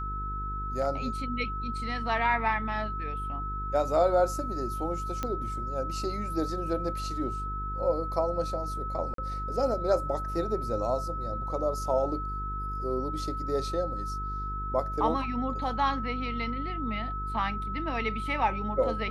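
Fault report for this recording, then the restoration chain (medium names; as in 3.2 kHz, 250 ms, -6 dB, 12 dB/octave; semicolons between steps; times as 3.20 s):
buzz 50 Hz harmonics 9 -36 dBFS
whine 1.3 kHz -34 dBFS
5.23 s: pop -17 dBFS
9.14–9.18 s: dropout 43 ms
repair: de-click; de-hum 50 Hz, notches 9; band-stop 1.3 kHz, Q 30; interpolate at 9.14 s, 43 ms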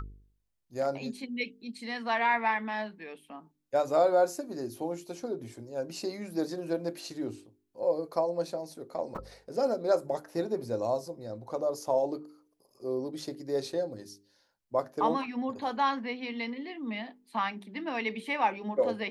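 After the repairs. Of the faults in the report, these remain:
nothing left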